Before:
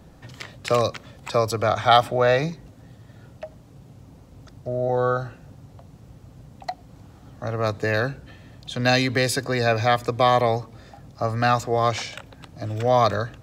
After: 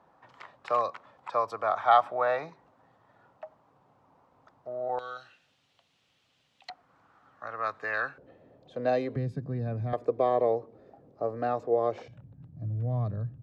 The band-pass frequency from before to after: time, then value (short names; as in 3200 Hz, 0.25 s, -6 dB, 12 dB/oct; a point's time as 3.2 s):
band-pass, Q 2.3
1000 Hz
from 4.99 s 3100 Hz
from 6.7 s 1300 Hz
from 8.18 s 500 Hz
from 9.16 s 160 Hz
from 9.93 s 440 Hz
from 12.08 s 130 Hz